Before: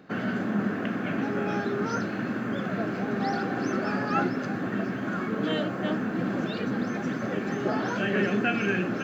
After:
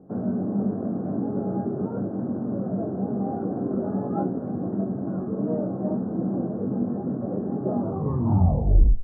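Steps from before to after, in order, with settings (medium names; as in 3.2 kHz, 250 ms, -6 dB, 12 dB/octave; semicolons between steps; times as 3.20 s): tape stop on the ending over 1.35 s; inverse Chebyshev low-pass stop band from 2.7 kHz, stop band 60 dB; bass shelf 98 Hz +11 dB; doubling 21 ms -5.5 dB; speakerphone echo 290 ms, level -30 dB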